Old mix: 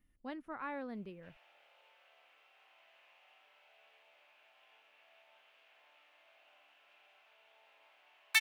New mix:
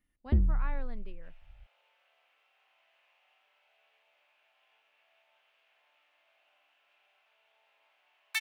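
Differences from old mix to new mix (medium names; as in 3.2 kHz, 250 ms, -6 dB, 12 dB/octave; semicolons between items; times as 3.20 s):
first sound: unmuted; second sound -4.0 dB; master: add bass shelf 320 Hz -6.5 dB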